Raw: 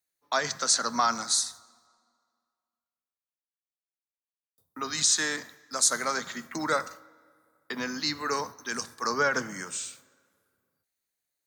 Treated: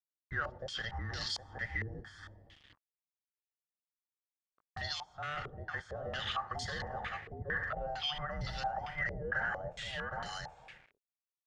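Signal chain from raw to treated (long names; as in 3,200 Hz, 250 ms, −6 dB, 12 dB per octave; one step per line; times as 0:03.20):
frequency inversion band by band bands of 1,000 Hz
low shelf with overshoot 200 Hz +11.5 dB, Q 1.5
in parallel at −5 dB: soft clipping −20.5 dBFS, distortion −12 dB
on the sum: notch filter 810 Hz, Q 25
reversed playback
downward compressor 6 to 1, threshold −32 dBFS, peak gain reduction 16.5 dB
reversed playback
bit reduction 9 bits
single-tap delay 765 ms −5.5 dB
brickwall limiter −32 dBFS, peak gain reduction 11 dB
low-pass on a step sequencer 4.4 Hz 430–4,300 Hz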